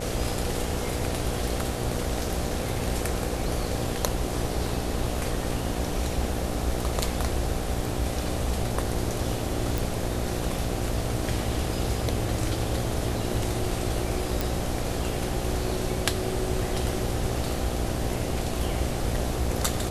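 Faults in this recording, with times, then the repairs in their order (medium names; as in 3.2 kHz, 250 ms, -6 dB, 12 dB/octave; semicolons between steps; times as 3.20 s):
buzz 60 Hz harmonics 13 -32 dBFS
9.78 s: pop
14.41 s: pop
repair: de-click; de-hum 60 Hz, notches 13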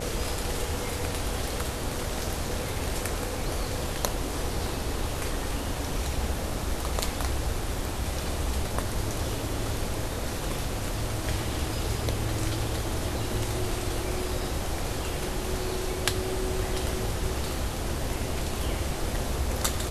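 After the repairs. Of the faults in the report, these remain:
nothing left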